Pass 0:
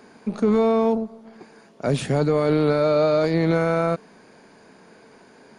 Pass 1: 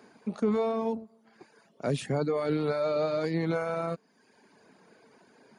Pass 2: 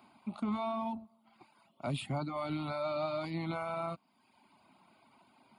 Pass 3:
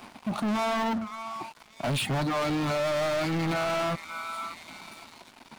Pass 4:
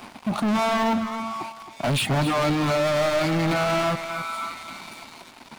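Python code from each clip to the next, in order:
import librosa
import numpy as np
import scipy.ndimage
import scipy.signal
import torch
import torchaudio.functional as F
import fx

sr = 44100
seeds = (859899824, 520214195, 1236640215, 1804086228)

y1 = fx.dereverb_blind(x, sr, rt60_s=0.9)
y1 = scipy.signal.sosfilt(scipy.signal.butter(2, 88.0, 'highpass', fs=sr, output='sos'), y1)
y1 = y1 * 10.0 ** (-6.5 / 20.0)
y2 = fx.peak_eq(y1, sr, hz=170.0, db=-5.5, octaves=0.77)
y2 = fx.fixed_phaser(y2, sr, hz=1700.0, stages=6)
y3 = fx.echo_stepped(y2, sr, ms=588, hz=1600.0, octaves=0.7, feedback_pct=70, wet_db=-11.0)
y3 = fx.leveller(y3, sr, passes=5)
y4 = y3 + 10.0 ** (-11.0 / 20.0) * np.pad(y3, (int(267 * sr / 1000.0), 0))[:len(y3)]
y4 = y4 * 10.0 ** (5.0 / 20.0)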